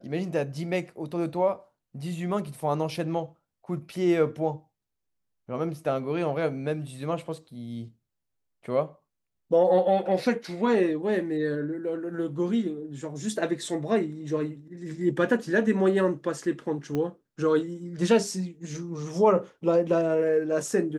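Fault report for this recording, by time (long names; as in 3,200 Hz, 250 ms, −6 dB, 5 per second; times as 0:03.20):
0:16.95: click −18 dBFS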